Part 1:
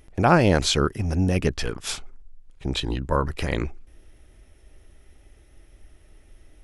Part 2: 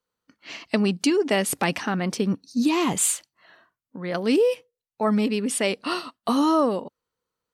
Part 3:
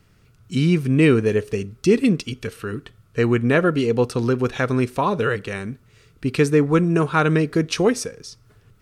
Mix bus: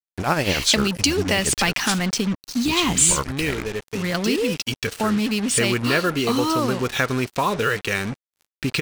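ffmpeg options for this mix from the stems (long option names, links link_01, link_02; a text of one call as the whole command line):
ffmpeg -i stem1.wav -i stem2.wav -i stem3.wav -filter_complex "[0:a]tremolo=f=10:d=0.69,volume=-4.5dB,asplit=2[link_01][link_02];[1:a]asubboost=boost=3.5:cutoff=220,volume=3dB[link_03];[2:a]adelay=2400,volume=2dB[link_04];[link_02]apad=whole_len=494570[link_05];[link_04][link_05]sidechaincompress=threshold=-36dB:ratio=16:attack=5.1:release=1400[link_06];[link_03][link_06]amix=inputs=2:normalize=0,lowpass=frequency=8100:width=0.5412,lowpass=frequency=8100:width=1.3066,acompressor=threshold=-25dB:ratio=2.5,volume=0dB[link_07];[link_01][link_07]amix=inputs=2:normalize=0,tiltshelf=frequency=1400:gain=-5.5,acontrast=77,acrusher=bits=4:mix=0:aa=0.5" out.wav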